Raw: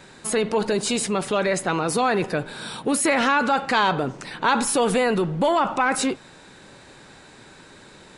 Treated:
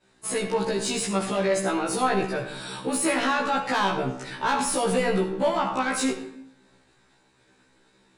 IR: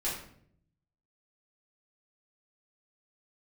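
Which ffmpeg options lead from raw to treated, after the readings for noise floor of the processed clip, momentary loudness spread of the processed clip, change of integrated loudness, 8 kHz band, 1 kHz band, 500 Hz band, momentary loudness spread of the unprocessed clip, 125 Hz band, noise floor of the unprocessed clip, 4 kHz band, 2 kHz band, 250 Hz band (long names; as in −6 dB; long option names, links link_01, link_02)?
−63 dBFS, 7 LU, −3.5 dB, −2.5 dB, −3.5 dB, −3.0 dB, 8 LU, −3.0 dB, −48 dBFS, −3.0 dB, −4.5 dB, −3.0 dB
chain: -filter_complex "[0:a]asoftclip=type=tanh:threshold=-15dB,agate=range=-33dB:threshold=-37dB:ratio=3:detection=peak,asplit=2[link_01][link_02];[1:a]atrim=start_sample=2205,adelay=50[link_03];[link_02][link_03]afir=irnorm=-1:irlink=0,volume=-12.5dB[link_04];[link_01][link_04]amix=inputs=2:normalize=0,afftfilt=real='re*1.73*eq(mod(b,3),0)':imag='im*1.73*eq(mod(b,3),0)':win_size=2048:overlap=0.75"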